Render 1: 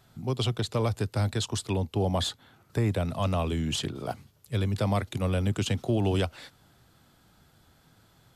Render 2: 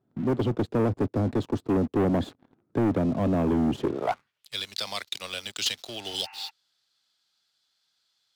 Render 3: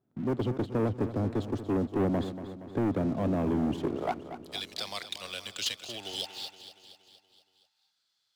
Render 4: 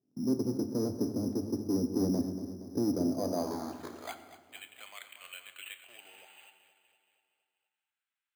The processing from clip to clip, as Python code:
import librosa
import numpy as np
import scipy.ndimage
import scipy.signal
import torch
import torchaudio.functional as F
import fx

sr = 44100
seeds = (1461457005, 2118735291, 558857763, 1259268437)

y1 = fx.filter_sweep_bandpass(x, sr, from_hz=290.0, to_hz=4500.0, start_s=3.79, end_s=4.53, q=2.2)
y1 = fx.leveller(y1, sr, passes=3)
y1 = fx.spec_repair(y1, sr, seeds[0], start_s=6.08, length_s=0.39, low_hz=760.0, high_hz=2900.0, source='before')
y1 = y1 * 10.0 ** (4.5 / 20.0)
y2 = fx.echo_feedback(y1, sr, ms=235, feedback_pct=58, wet_db=-12)
y2 = y2 * 10.0 ** (-4.5 / 20.0)
y3 = fx.filter_sweep_bandpass(y2, sr, from_hz=270.0, to_hz=3000.0, start_s=2.88, end_s=4.21, q=1.3)
y3 = np.repeat(scipy.signal.resample_poly(y3, 1, 8), 8)[:len(y3)]
y3 = fx.rev_fdn(y3, sr, rt60_s=1.3, lf_ratio=1.55, hf_ratio=0.7, size_ms=68.0, drr_db=7.5)